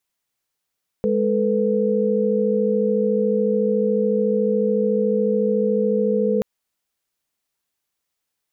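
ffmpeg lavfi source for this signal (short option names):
-f lavfi -i "aevalsrc='0.0891*(sin(2*PI*207.65*t)+sin(2*PI*440*t)+sin(2*PI*493.88*t))':d=5.38:s=44100"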